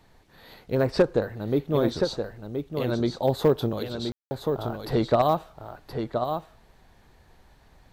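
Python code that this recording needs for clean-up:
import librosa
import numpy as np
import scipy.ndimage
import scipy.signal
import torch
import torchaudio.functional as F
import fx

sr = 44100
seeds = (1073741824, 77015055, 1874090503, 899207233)

y = fx.fix_declip(x, sr, threshold_db=-11.5)
y = fx.fix_ambience(y, sr, seeds[0], print_start_s=6.57, print_end_s=7.07, start_s=4.12, end_s=4.31)
y = fx.fix_echo_inverse(y, sr, delay_ms=1023, level_db=-6.5)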